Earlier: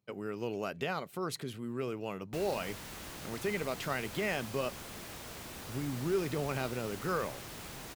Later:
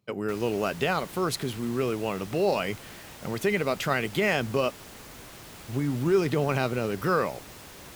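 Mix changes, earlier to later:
speech +9.0 dB; background: entry -2.05 s

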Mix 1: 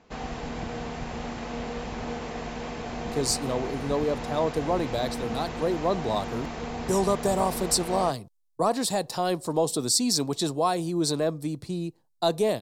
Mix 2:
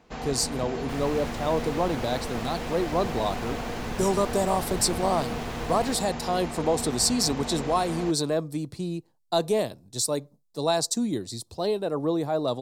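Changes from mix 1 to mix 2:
speech: entry -2.90 s; second sound: unmuted

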